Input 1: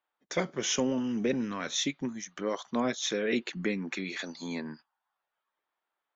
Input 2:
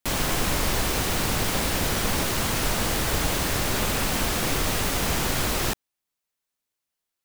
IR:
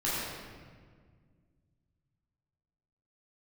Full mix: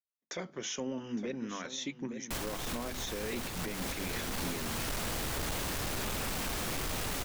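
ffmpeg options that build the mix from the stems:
-filter_complex "[0:a]agate=range=-33dB:threshold=-59dB:ratio=3:detection=peak,bandreject=frequency=50:width_type=h:width=6,bandreject=frequency=100:width_type=h:width=6,bandreject=frequency=150:width_type=h:width=6,bandreject=frequency=200:width_type=h:width=6,bandreject=frequency=250:width_type=h:width=6,volume=-3dB,asplit=2[link_01][link_02];[link_02]volume=-14dB[link_03];[1:a]asoftclip=type=tanh:threshold=-26dB,adelay=2250,volume=-5.5dB[link_04];[link_03]aecho=0:1:861:1[link_05];[link_01][link_04][link_05]amix=inputs=3:normalize=0,alimiter=level_in=3.5dB:limit=-24dB:level=0:latency=1:release=225,volume=-3.5dB"

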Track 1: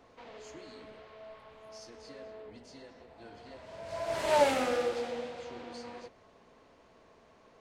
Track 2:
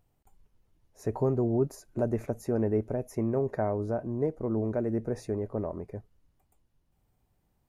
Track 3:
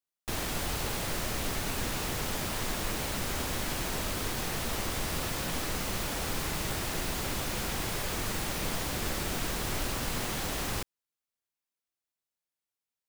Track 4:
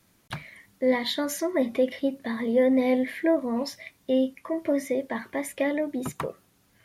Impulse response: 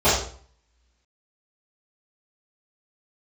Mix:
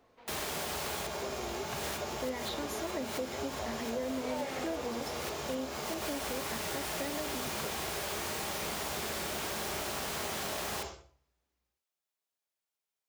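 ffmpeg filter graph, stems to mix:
-filter_complex "[0:a]volume=-6.5dB[link_01];[1:a]highpass=470,volume=-9dB,asplit=2[link_02][link_03];[2:a]highpass=frequency=400:poles=1,volume=-1dB,asplit=2[link_04][link_05];[link_05]volume=-22dB[link_06];[3:a]adelay=1400,volume=-9dB[link_07];[link_03]apad=whole_len=577231[link_08];[link_04][link_08]sidechaincompress=threshold=-59dB:ratio=8:attack=16:release=118[link_09];[4:a]atrim=start_sample=2205[link_10];[link_06][link_10]afir=irnorm=-1:irlink=0[link_11];[link_01][link_02][link_09][link_07][link_11]amix=inputs=5:normalize=0,acompressor=threshold=-33dB:ratio=4"

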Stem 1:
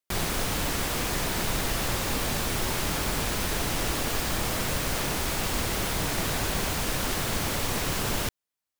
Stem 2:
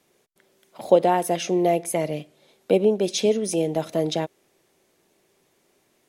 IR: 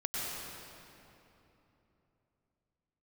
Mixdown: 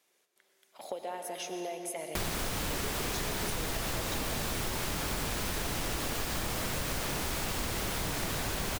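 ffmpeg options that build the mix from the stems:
-filter_complex "[0:a]adelay=2050,volume=0dB[link_01];[1:a]highpass=frequency=1100:poles=1,acompressor=threshold=-31dB:ratio=6,volume=-7.5dB,asplit=2[link_02][link_03];[link_03]volume=-6dB[link_04];[2:a]atrim=start_sample=2205[link_05];[link_04][link_05]afir=irnorm=-1:irlink=0[link_06];[link_01][link_02][link_06]amix=inputs=3:normalize=0,acompressor=threshold=-30dB:ratio=6"

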